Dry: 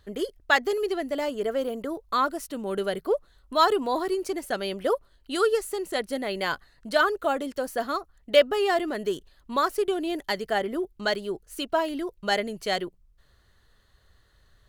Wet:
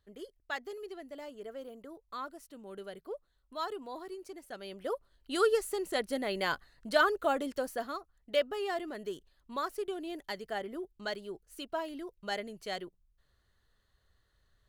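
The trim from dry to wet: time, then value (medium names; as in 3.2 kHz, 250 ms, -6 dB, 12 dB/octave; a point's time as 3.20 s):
4.47 s -16.5 dB
5.41 s -4 dB
7.57 s -4 dB
7.98 s -11 dB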